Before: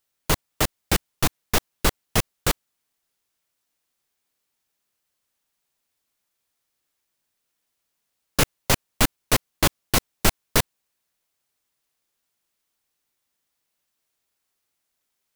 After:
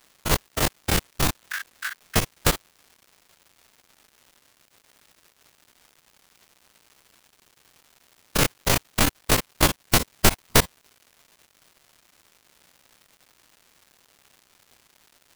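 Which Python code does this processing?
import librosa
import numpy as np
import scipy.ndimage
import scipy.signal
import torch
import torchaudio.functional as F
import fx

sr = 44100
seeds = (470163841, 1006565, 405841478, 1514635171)

y = fx.spec_steps(x, sr, hold_ms=50)
y = fx.ladder_highpass(y, sr, hz=1500.0, resonance_pct=80, at=(1.39, 2.16))
y = fx.dmg_crackle(y, sr, seeds[0], per_s=390.0, level_db=-47.0)
y = y * librosa.db_to_amplitude(5.0)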